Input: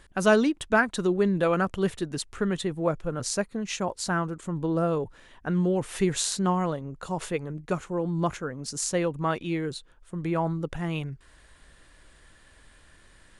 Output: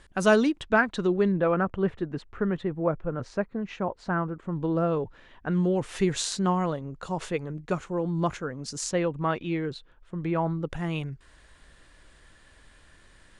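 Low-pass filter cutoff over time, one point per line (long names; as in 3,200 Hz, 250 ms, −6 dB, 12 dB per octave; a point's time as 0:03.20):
9,600 Hz
from 0:00.61 4,400 Hz
from 0:01.32 1,800 Hz
from 0:04.53 3,900 Hz
from 0:05.52 7,100 Hz
from 0:08.91 3,800 Hz
from 0:10.70 9,000 Hz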